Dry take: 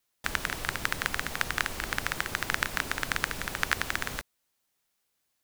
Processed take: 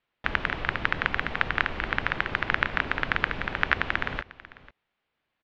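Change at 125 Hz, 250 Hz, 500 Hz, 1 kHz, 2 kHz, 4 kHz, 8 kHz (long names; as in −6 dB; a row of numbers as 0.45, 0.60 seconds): +4.5 dB, +4.5 dB, +4.5 dB, +4.5 dB, +4.5 dB, −0.5 dB, below −20 dB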